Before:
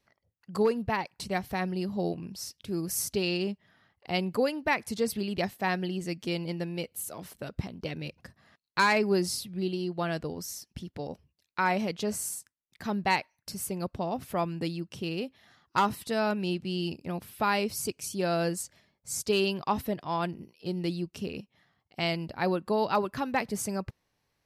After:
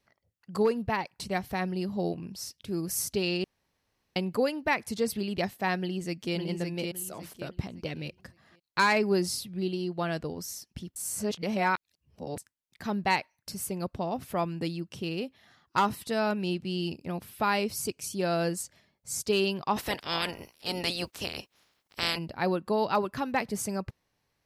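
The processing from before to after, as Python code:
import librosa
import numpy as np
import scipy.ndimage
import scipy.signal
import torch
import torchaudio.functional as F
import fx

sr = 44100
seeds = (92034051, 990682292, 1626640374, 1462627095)

y = fx.echo_throw(x, sr, start_s=5.79, length_s=0.56, ms=560, feedback_pct=30, wet_db=-4.0)
y = fx.spec_clip(y, sr, under_db=27, at=(19.76, 22.17), fade=0.02)
y = fx.edit(y, sr, fx.room_tone_fill(start_s=3.44, length_s=0.72),
    fx.reverse_span(start_s=10.96, length_s=1.42), tone=tone)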